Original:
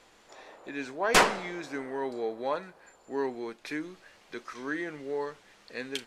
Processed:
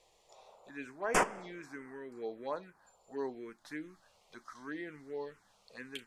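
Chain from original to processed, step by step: 1.23–2.17 compressor 6:1, threshold -32 dBFS, peak gain reduction 8 dB; envelope phaser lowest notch 240 Hz, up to 4000 Hz, full sweep at -24.5 dBFS; gain -6 dB

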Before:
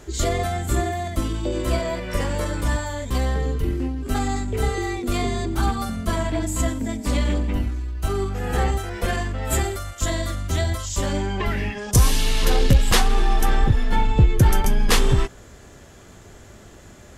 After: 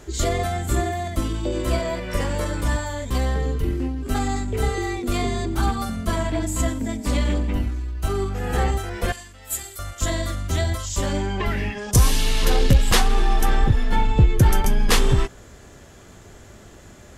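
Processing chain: 9.12–9.79 pre-emphasis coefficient 0.9

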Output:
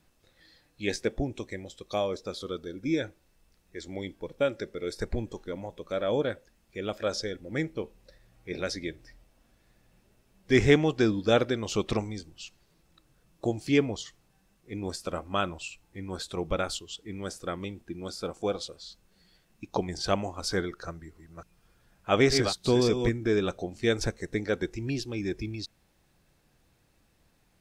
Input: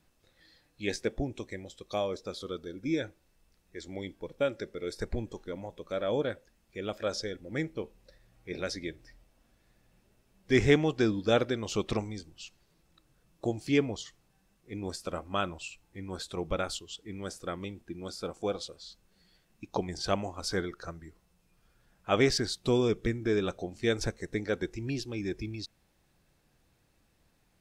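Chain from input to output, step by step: 20.85–23.09 reverse delay 0.291 s, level -7 dB; gain +2.5 dB

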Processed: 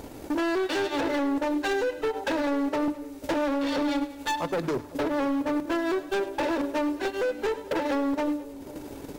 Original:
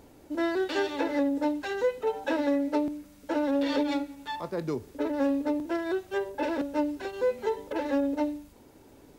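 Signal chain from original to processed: notches 50/100/150/200/250/300/350 Hz; limiter -24 dBFS, peak gain reduction 8 dB; transient shaper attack +10 dB, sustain -7 dB; in parallel at +3 dB: compressor, threshold -41 dBFS, peak gain reduction 19 dB; on the sum: overloaded stage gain 28.5 dB; on a send: split-band echo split 670 Hz, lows 0.492 s, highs 0.104 s, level -15.5 dB; on the sum: gain +4.5 dB

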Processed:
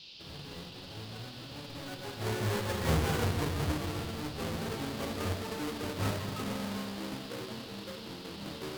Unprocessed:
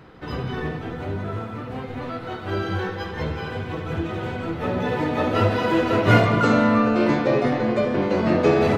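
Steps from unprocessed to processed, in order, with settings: half-waves squared off; Doppler pass-by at 3.09, 37 m/s, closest 14 m; band noise 2600–5000 Hz -46 dBFS; gain -5 dB

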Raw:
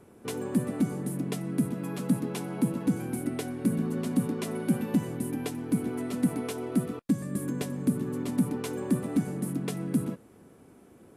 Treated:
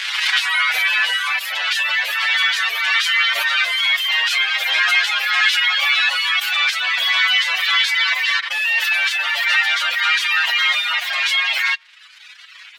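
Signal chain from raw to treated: speed glide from 128% -> 169%; spectral gate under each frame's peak -15 dB weak; tilt +2.5 dB/oct; in parallel at -1 dB: compressor 8:1, threshold -44 dBFS, peak gain reduction 14.5 dB; on the sum: fuzz box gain 51 dB, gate -49 dBFS; Butterworth band-pass 2500 Hz, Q 1.1; time stretch by phase-locked vocoder 1.7×; reverb RT60 0.40 s, pre-delay 7 ms, DRR 18.5 dB; reverb removal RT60 1.3 s; backwards sustainer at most 31 dB/s; gain +6 dB

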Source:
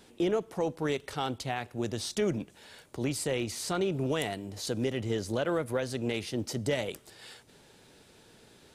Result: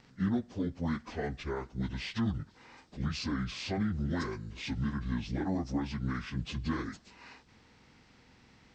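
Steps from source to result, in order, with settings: pitch shift by moving bins -10.5 st; gain -1.5 dB

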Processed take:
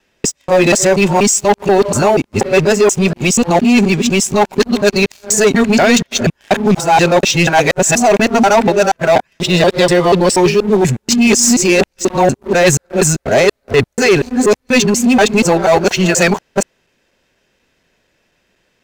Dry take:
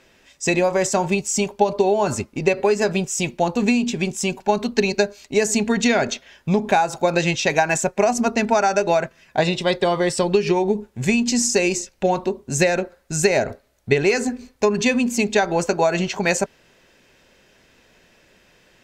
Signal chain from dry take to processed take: local time reversal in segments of 0.241 s; sample leveller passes 3

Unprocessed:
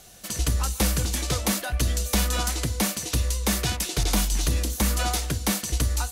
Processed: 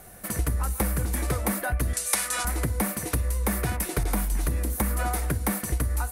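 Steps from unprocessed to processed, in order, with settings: band shelf 4500 Hz -14 dB; compressor, threshold -27 dBFS, peak gain reduction 8.5 dB; 1.93–2.45 weighting filter ITU-R 468; gain +4.5 dB

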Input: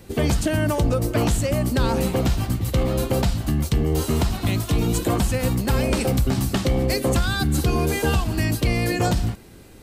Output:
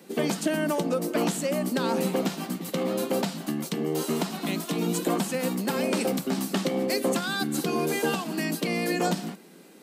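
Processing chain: elliptic high-pass 170 Hz, stop band 40 dB; gain -2.5 dB

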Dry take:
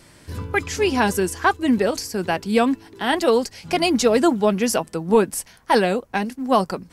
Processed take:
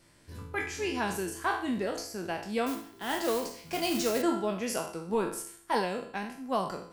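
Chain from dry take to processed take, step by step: spectral trails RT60 0.52 s; resonator 340 Hz, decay 0.78 s, mix 70%; 2.66–4.22 modulation noise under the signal 12 dB; gain -4 dB

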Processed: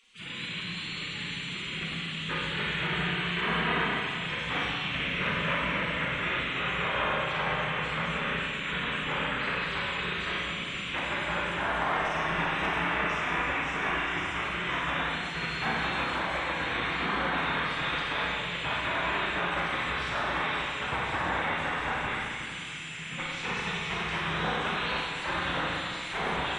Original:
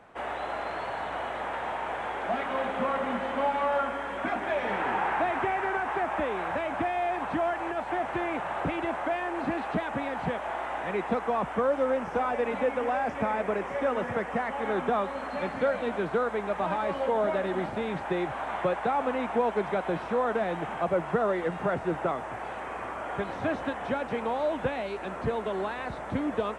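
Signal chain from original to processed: spectral gate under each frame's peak -20 dB weak; notches 50/100/150 Hz; spectral gate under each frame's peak -20 dB strong; bell 160 Hz +13 dB 0.32 oct; in parallel at +2 dB: limiter -35 dBFS, peak gain reduction 8.5 dB; on the sum: overloaded stage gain 26 dB; on a send: thin delay 0.535 s, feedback 83%, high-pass 3400 Hz, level -6.5 dB; on the sum: Schroeder reverb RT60 2 s, combs from 31 ms, DRR -4.5 dB; gain +1.5 dB

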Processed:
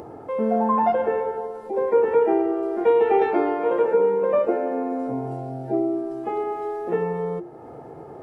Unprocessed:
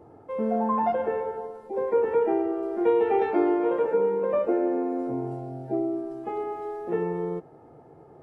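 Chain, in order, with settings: low shelf 140 Hz -4 dB; notches 50/100/150/200/250/300/350 Hz; in parallel at -2.5 dB: upward compressor, threshold -28 dBFS

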